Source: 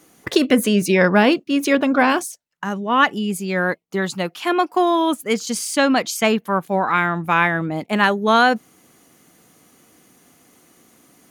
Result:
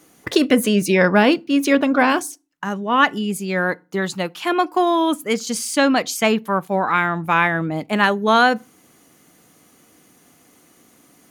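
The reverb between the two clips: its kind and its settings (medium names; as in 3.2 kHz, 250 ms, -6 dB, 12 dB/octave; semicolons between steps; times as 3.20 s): FDN reverb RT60 0.31 s, low-frequency decay 1.45×, high-frequency decay 0.75×, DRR 20 dB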